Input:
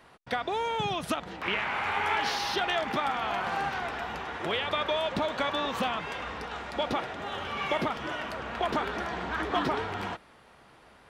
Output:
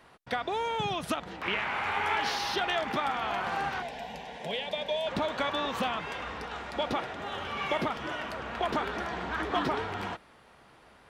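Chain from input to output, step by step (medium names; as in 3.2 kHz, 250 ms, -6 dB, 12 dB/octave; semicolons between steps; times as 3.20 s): 3.82–5.07 s: static phaser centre 340 Hz, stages 6; trim -1 dB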